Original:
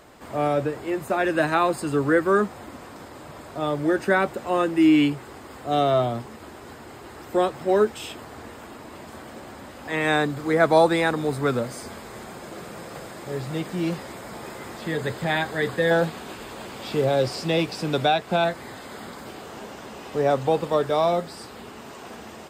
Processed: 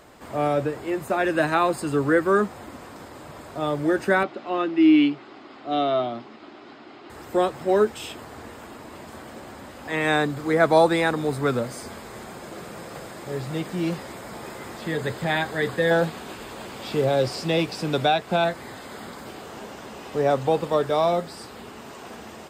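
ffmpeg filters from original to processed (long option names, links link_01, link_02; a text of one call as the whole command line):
ffmpeg -i in.wav -filter_complex "[0:a]asettb=1/sr,asplit=3[link_01][link_02][link_03];[link_01]atrim=end=4.234[link_04];[link_02]atrim=start=4.23:end=7.1,asetpts=PTS-STARTPTS,afade=type=in:duration=0.004:curve=qsin,afade=type=out:start_time=2.866:duration=0.004:curve=qsin,highpass=260,equalizer=frequency=300:width_type=q:width=4:gain=4,equalizer=frequency=490:width_type=q:width=4:gain=-9,equalizer=frequency=940:width_type=q:width=4:gain=-5,equalizer=frequency=1700:width_type=q:width=4:gain=-5,lowpass=frequency=4600:width=0.5412,lowpass=frequency=4600:width=1.3066[link_05];[link_03]atrim=start=7.096[link_06];[link_04][link_05]acrossfade=duration=0.004:curve1=hsin:curve2=qsin[link_07];[link_07][link_06]acrossfade=duration=0.004:curve1=qsin:curve2=hsin" out.wav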